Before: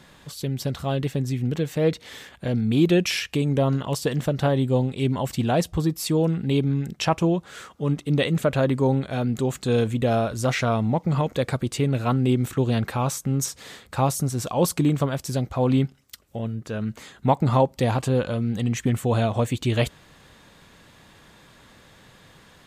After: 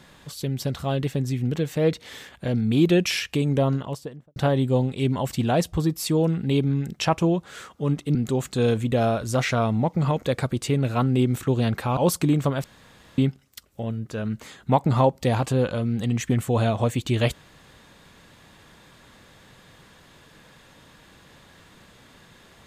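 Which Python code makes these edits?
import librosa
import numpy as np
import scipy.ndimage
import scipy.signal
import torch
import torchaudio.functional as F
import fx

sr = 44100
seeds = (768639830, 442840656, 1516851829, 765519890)

y = fx.studio_fade_out(x, sr, start_s=3.57, length_s=0.79)
y = fx.edit(y, sr, fx.cut(start_s=8.15, length_s=1.1),
    fx.cut(start_s=13.07, length_s=1.46),
    fx.room_tone_fill(start_s=15.2, length_s=0.54), tone=tone)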